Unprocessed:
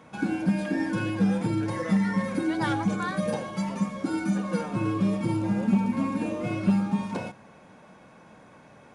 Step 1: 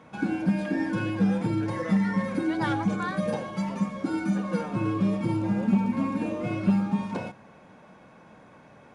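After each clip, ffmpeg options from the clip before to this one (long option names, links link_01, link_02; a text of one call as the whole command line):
ffmpeg -i in.wav -af "highshelf=frequency=6700:gain=-9" out.wav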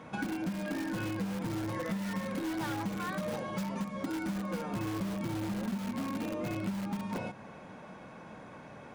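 ffmpeg -i in.wav -filter_complex "[0:a]asplit=2[link_01][link_02];[link_02]aeval=exprs='(mod(15*val(0)+1,2)-1)/15':channel_layout=same,volume=-7dB[link_03];[link_01][link_03]amix=inputs=2:normalize=0,acompressor=threshold=-33dB:ratio=6" out.wav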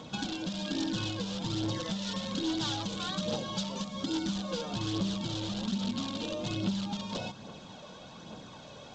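ffmpeg -i in.wav -af "aphaser=in_gain=1:out_gain=1:delay=2.1:decay=0.37:speed=1.2:type=triangular,highshelf=frequency=2700:width_type=q:width=3:gain=9" -ar 16000 -c:a g722 out.g722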